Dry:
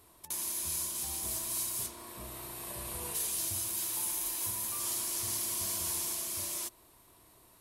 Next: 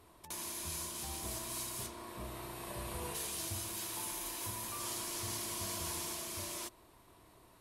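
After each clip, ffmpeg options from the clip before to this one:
ffmpeg -i in.wav -af "lowpass=frequency=3100:poles=1,volume=2dB" out.wav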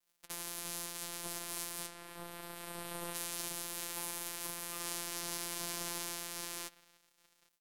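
ffmpeg -i in.wav -filter_complex "[0:a]afftfilt=real='hypot(re,im)*cos(PI*b)':imag='0':win_size=1024:overlap=0.75,asplit=2[link_01][link_02];[link_02]adelay=816.3,volume=-11dB,highshelf=frequency=4000:gain=-18.4[link_03];[link_01][link_03]amix=inputs=2:normalize=0,aeval=exprs='sgn(val(0))*max(abs(val(0))-0.00316,0)':channel_layout=same,volume=4.5dB" out.wav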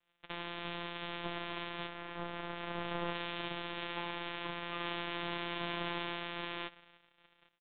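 ffmpeg -i in.wav -af "aresample=8000,aresample=44100,volume=6.5dB" out.wav

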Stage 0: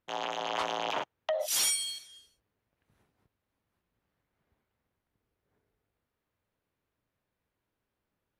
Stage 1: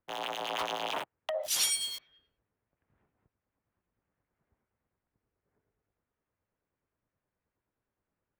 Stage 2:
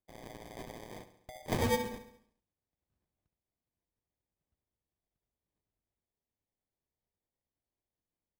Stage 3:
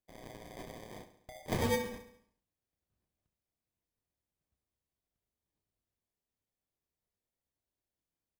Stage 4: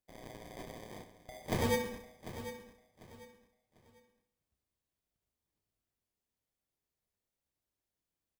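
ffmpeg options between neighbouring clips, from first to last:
ffmpeg -i in.wav -filter_complex "[0:a]equalizer=frequency=3500:width=0.99:gain=3.5,acrossover=split=350|2400[link_01][link_02][link_03];[link_03]aeval=exprs='val(0)*gte(abs(val(0)),0.0112)':channel_layout=same[link_04];[link_01][link_02][link_04]amix=inputs=3:normalize=0,acrossover=split=1500[link_05][link_06];[link_05]aeval=exprs='val(0)*(1-0.5/2+0.5/2*cos(2*PI*9.5*n/s))':channel_layout=same[link_07];[link_06]aeval=exprs='val(0)*(1-0.5/2-0.5/2*cos(2*PI*9.5*n/s))':channel_layout=same[link_08];[link_07][link_08]amix=inputs=2:normalize=0" out.wav
ffmpeg -i in.wav -af "equalizer=frequency=125:width_type=o:width=1:gain=-5,equalizer=frequency=250:width_type=o:width=1:gain=-4,equalizer=frequency=500:width_type=o:width=1:gain=-12,equalizer=frequency=1000:width_type=o:width=1:gain=-4,equalizer=frequency=2000:width_type=o:width=1:gain=-6,equalizer=frequency=4000:width_type=o:width=1:gain=-9,equalizer=frequency=8000:width_type=o:width=1:gain=11,acrusher=samples=32:mix=1:aa=0.000001,aecho=1:1:69|138|207|276|345|414:0.237|0.128|0.0691|0.0373|0.0202|0.0109,volume=-5.5dB" out.wav
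ffmpeg -i in.wav -filter_complex "[0:a]bandreject=frequency=850:width=25,asplit=2[link_01][link_02];[link_02]adelay=30,volume=-9dB[link_03];[link_01][link_03]amix=inputs=2:normalize=0,volume=-1.5dB" out.wav
ffmpeg -i in.wav -af "aecho=1:1:746|1492|2238:0.237|0.0688|0.0199" out.wav

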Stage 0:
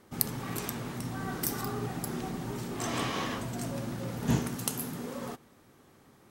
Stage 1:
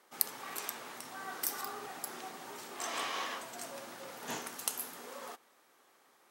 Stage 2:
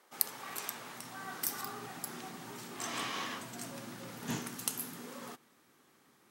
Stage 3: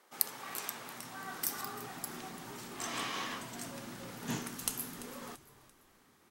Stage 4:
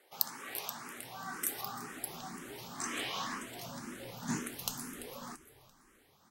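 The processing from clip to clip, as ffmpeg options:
ffmpeg -i in.wav -af "highpass=630,volume=-2dB" out.wav
ffmpeg -i in.wav -af "asubboost=boost=8.5:cutoff=210" out.wav
ffmpeg -i in.wav -filter_complex "[0:a]asplit=4[link_01][link_02][link_03][link_04];[link_02]adelay=339,afreqshift=-110,volume=-17dB[link_05];[link_03]adelay=678,afreqshift=-220,volume=-24.7dB[link_06];[link_04]adelay=1017,afreqshift=-330,volume=-32.5dB[link_07];[link_01][link_05][link_06][link_07]amix=inputs=4:normalize=0" out.wav
ffmpeg -i in.wav -filter_complex "[0:a]asplit=2[link_01][link_02];[link_02]afreqshift=2[link_03];[link_01][link_03]amix=inputs=2:normalize=1,volume=3dB" out.wav

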